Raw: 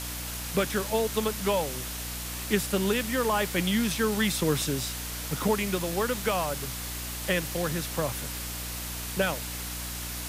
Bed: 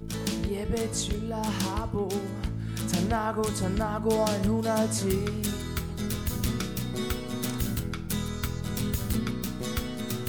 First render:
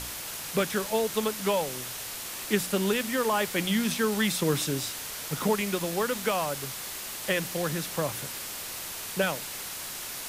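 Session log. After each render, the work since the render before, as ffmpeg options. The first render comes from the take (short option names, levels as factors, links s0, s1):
-af "bandreject=f=60:t=h:w=4,bandreject=f=120:t=h:w=4,bandreject=f=180:t=h:w=4,bandreject=f=240:t=h:w=4,bandreject=f=300:t=h:w=4"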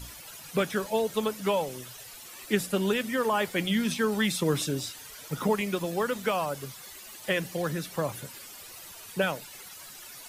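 -af "afftdn=nr=13:nf=-38"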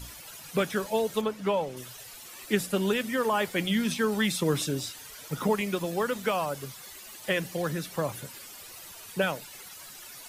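-filter_complex "[0:a]asettb=1/sr,asplit=3[s0][s1][s2];[s0]atrim=end=1.214[s3];[s1]atrim=start=1.21:end=1.77,asetpts=PTS-STARTPTS,afade=t=in:d=0.004:c=qsin,afade=t=out:st=0.556:d=0.004:c=qsin,lowpass=f=2600:p=1[s4];[s2]atrim=start=1.766[s5];[s3][s4]acrossfade=d=0.004:c1=hsin:c2=qsin[s6];[s6][s5]acrossfade=d=0.004:c1=qsin:c2=hsin"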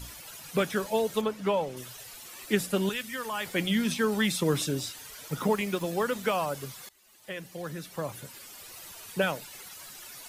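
-filter_complex "[0:a]asettb=1/sr,asplit=3[s0][s1][s2];[s0]atrim=end=2.894[s3];[s1]atrim=start=2.89:end=3.46,asetpts=PTS-STARTPTS,afade=t=in:d=0.004:c=qsin,afade=t=out:st=0.566:d=0.004:c=qsin,equalizer=f=380:w=0.4:g=-12.5[s4];[s2]atrim=start=3.456[s5];[s3][s4]acrossfade=d=0.004:c1=hsin:c2=qsin[s6];[s6][s5]acrossfade=d=0.004:c1=qsin:c2=hsin,asettb=1/sr,asplit=3[s7][s8][s9];[s7]atrim=end=5.424[s10];[s8]atrim=start=5.42:end=5.82,asetpts=PTS-STARTPTS,afade=t=in:d=0.004:c=qsin,afade=t=out:st=0.396:d=0.004:c=qsin,aeval=exprs='sgn(val(0))*max(abs(val(0))-0.00282,0)':c=same[s11];[s9]atrim=start=5.816[s12];[s10][s11]acrossfade=d=0.004:c1=hsin:c2=qsin[s13];[s13][s12]acrossfade=d=0.004:c1=qsin:c2=hsin,asplit=2[s14][s15];[s14]atrim=end=6.89,asetpts=PTS-STARTPTS,afade=t=out:st=6.886:d=0.004:c=hsin:silence=0.0891251[s16];[s15]atrim=start=6.89,asetpts=PTS-STARTPTS,afade=t=in:d=1.96:silence=0.0891251[s17];[s16][s17]concat=n=2:v=0:a=1"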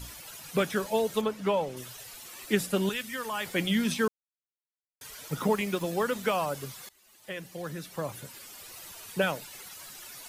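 -filter_complex "[0:a]asplit=3[s0][s1][s2];[s0]atrim=end=4.08,asetpts=PTS-STARTPTS,afade=t=out:st=4.076:d=0.004:c=hsin[s3];[s1]atrim=start=4.08:end=5.01,asetpts=PTS-STARTPTS,volume=0[s4];[s2]atrim=start=5.01,asetpts=PTS-STARTPTS,afade=t=in:d=0.004:c=hsin[s5];[s3][s4][s5]concat=n=3:v=0:a=1"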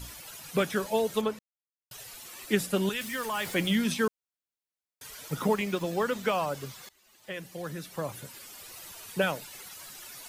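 -filter_complex "[0:a]asettb=1/sr,asplit=3[s0][s1][s2];[s0]atrim=end=3.014[s3];[s1]atrim=start=3.01:end=3.76,asetpts=PTS-STARTPTS,afade=t=in:d=0.004:c=qsin,afade=t=out:st=0.746:d=0.004:c=qsin,aeval=exprs='val(0)+0.5*0.0106*sgn(val(0))':c=same[s4];[s2]atrim=start=3.756[s5];[s3][s4]acrossfade=d=0.004:c1=hsin:c2=qsin[s6];[s6][s5]acrossfade=d=0.004:c1=qsin:c2=hsin,asettb=1/sr,asplit=3[s7][s8][s9];[s7]atrim=end=5.544[s10];[s8]atrim=start=5.54:end=7.34,asetpts=PTS-STARTPTS,afade=t=in:d=0.004:c=qsin,afade=t=out:st=1.796:d=0.004:c=qsin,equalizer=f=11000:t=o:w=0.71:g=-6.5[s11];[s9]atrim=start=7.336[s12];[s10][s11]acrossfade=d=0.004:c1=hsin:c2=qsin[s13];[s13][s12]acrossfade=d=0.004:c1=qsin:c2=hsin,asplit=3[s14][s15][s16];[s14]atrim=end=1.39,asetpts=PTS-STARTPTS,afade=t=out:st=1.386:d=0.004:c=hsin[s17];[s15]atrim=start=1.39:end=1.91,asetpts=PTS-STARTPTS,volume=0[s18];[s16]atrim=start=1.91,asetpts=PTS-STARTPTS,afade=t=in:d=0.004:c=hsin[s19];[s17][s18][s19]concat=n=3:v=0:a=1"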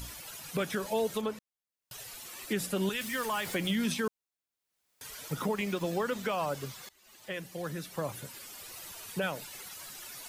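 -af "acompressor=mode=upward:threshold=0.00355:ratio=2.5,alimiter=limit=0.0794:level=0:latency=1:release=104"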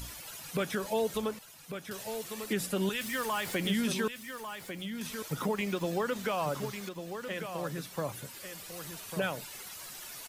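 -af "aecho=1:1:1147:0.376"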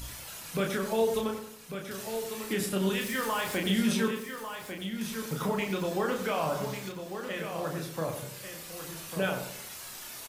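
-filter_complex "[0:a]asplit=2[s0][s1];[s1]adelay=31,volume=0.668[s2];[s0][s2]amix=inputs=2:normalize=0,asplit=2[s3][s4];[s4]adelay=91,lowpass=f=1400:p=1,volume=0.473,asplit=2[s5][s6];[s6]adelay=91,lowpass=f=1400:p=1,volume=0.46,asplit=2[s7][s8];[s8]adelay=91,lowpass=f=1400:p=1,volume=0.46,asplit=2[s9][s10];[s10]adelay=91,lowpass=f=1400:p=1,volume=0.46,asplit=2[s11][s12];[s12]adelay=91,lowpass=f=1400:p=1,volume=0.46[s13];[s3][s5][s7][s9][s11][s13]amix=inputs=6:normalize=0"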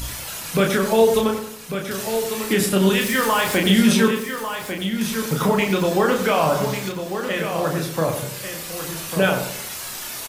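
-af "volume=3.76"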